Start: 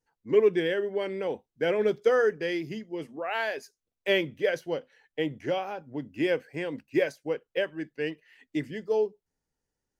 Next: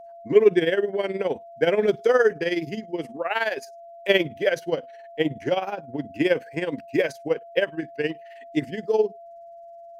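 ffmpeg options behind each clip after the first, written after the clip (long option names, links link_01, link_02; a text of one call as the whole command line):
ffmpeg -i in.wav -af "tremolo=f=19:d=0.72,aeval=exprs='val(0)+0.00355*sin(2*PI*680*n/s)':channel_layout=same,volume=8dB" out.wav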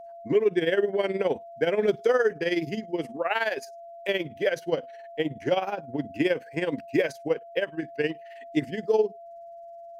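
ffmpeg -i in.wav -af "alimiter=limit=-12.5dB:level=0:latency=1:release=349" out.wav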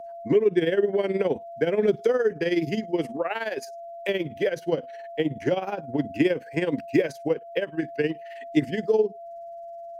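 ffmpeg -i in.wav -filter_complex "[0:a]acrossover=split=430[link_01][link_02];[link_02]acompressor=threshold=-32dB:ratio=6[link_03];[link_01][link_03]amix=inputs=2:normalize=0,volume=4.5dB" out.wav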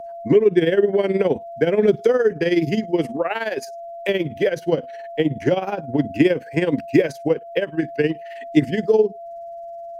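ffmpeg -i in.wav -af "lowshelf=frequency=200:gain=4.5,volume=4.5dB" out.wav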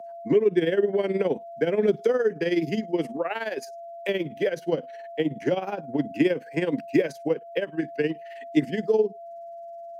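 ffmpeg -i in.wav -af "highpass=frequency=150:width=0.5412,highpass=frequency=150:width=1.3066,volume=-5.5dB" out.wav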